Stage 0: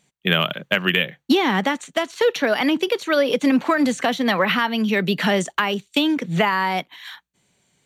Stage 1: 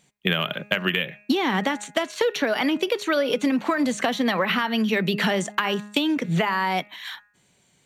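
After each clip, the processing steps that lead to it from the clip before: de-hum 207.2 Hz, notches 13; compression, threshold -21 dBFS, peak gain reduction 8.5 dB; trim +2 dB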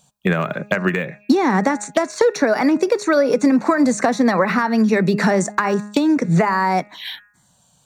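touch-sensitive phaser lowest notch 340 Hz, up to 3.1 kHz, full sweep at -26.5 dBFS; trim +7.5 dB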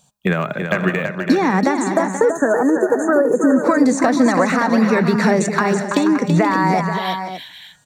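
time-frequency box 1.73–3.64 s, 1.9–6.2 kHz -29 dB; on a send: multi-tap echo 331/481/570 ms -6.5/-11/-11.5 dB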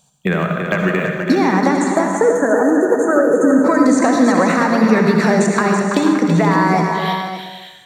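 reverberation RT60 1.0 s, pre-delay 58 ms, DRR 3.5 dB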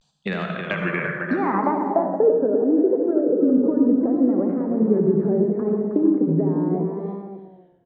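vibrato 0.73 Hz 95 cents; speakerphone echo 260 ms, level -23 dB; low-pass sweep 4.5 kHz -> 390 Hz, 0.36–2.60 s; trim -9 dB

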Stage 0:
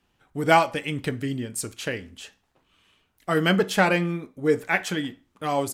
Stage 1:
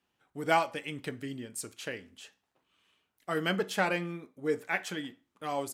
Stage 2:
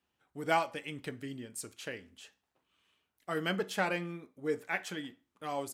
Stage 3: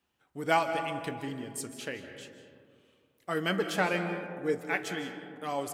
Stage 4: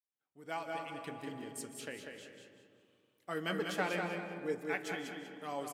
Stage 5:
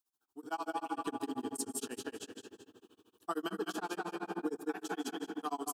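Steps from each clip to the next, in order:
high-pass 210 Hz 6 dB/octave; trim -8 dB
peaking EQ 70 Hz +7 dB 0.39 oct; trim -3 dB
algorithmic reverb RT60 2.3 s, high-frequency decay 0.3×, pre-delay 115 ms, DRR 7.5 dB; trim +3 dB
fade-in on the opening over 1.34 s; high-pass 120 Hz; on a send: feedback delay 193 ms, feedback 27%, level -5.5 dB; on the sum: trim -7 dB
compression 5:1, threshold -41 dBFS, peak gain reduction 11.5 dB; static phaser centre 560 Hz, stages 6; tremolo 13 Hz, depth 100%; trim +14 dB

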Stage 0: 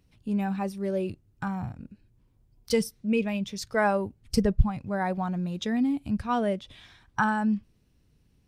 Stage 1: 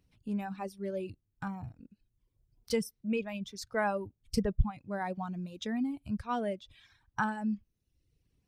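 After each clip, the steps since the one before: reverb removal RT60 0.9 s; trim -6 dB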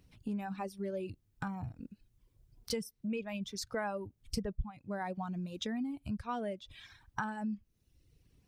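compression 3:1, threshold -45 dBFS, peak gain reduction 19 dB; trim +7 dB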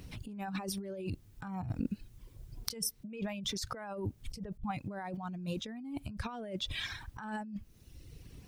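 compressor with a negative ratio -47 dBFS, ratio -1; trim +7.5 dB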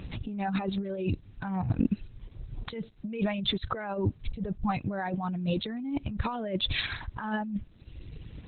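trim +9 dB; Opus 8 kbps 48 kHz

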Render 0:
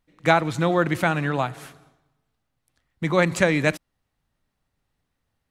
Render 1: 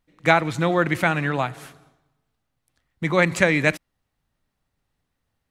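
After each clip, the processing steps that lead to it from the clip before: dynamic bell 2.1 kHz, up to +5 dB, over -36 dBFS, Q 1.9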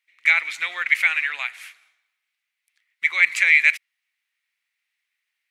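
peak limiter -8 dBFS, peak gain reduction 6 dB; resonant high-pass 2.2 kHz, resonance Q 4.6; trim -1 dB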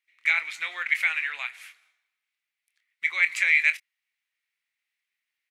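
doubling 25 ms -11 dB; trim -5.5 dB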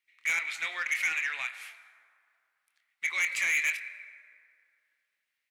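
plate-style reverb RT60 2.5 s, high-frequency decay 0.5×, DRR 15 dB; saturation -23 dBFS, distortion -7 dB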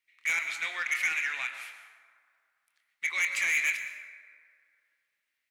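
plate-style reverb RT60 1.1 s, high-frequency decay 0.6×, pre-delay 105 ms, DRR 9.5 dB

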